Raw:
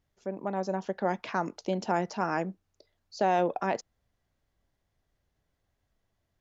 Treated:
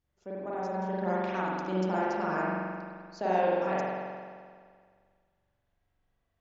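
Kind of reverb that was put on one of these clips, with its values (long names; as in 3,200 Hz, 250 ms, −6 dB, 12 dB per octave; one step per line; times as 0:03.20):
spring reverb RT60 1.9 s, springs 43 ms, chirp 60 ms, DRR −7.5 dB
level −8 dB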